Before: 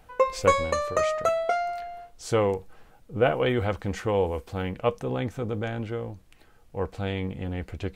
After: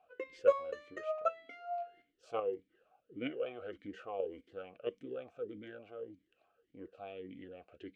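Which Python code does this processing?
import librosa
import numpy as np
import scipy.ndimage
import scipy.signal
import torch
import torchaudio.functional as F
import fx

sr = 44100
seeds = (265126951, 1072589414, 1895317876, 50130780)

p1 = fx.level_steps(x, sr, step_db=21)
p2 = x + (p1 * 10.0 ** (2.5 / 20.0))
p3 = fx.vowel_sweep(p2, sr, vowels='a-i', hz=1.7)
y = p3 * 10.0 ** (-6.5 / 20.0)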